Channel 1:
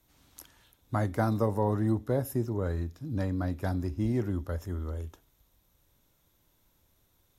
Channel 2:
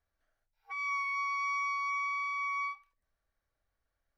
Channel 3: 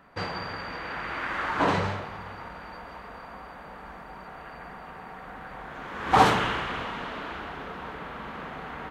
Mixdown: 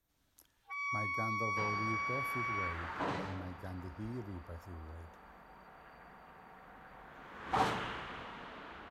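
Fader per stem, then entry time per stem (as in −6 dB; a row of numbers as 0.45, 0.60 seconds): −14.0, −3.5, −13.5 decibels; 0.00, 0.00, 1.40 seconds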